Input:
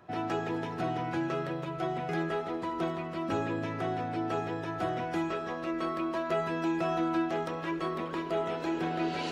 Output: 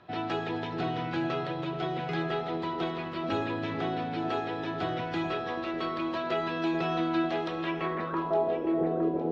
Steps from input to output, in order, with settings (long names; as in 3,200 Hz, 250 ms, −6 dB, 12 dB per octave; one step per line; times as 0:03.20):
low-pass filter sweep 3,900 Hz → 480 Hz, 0:07.61–0:08.64
delay that swaps between a low-pass and a high-pass 431 ms, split 800 Hz, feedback 55%, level −7 dB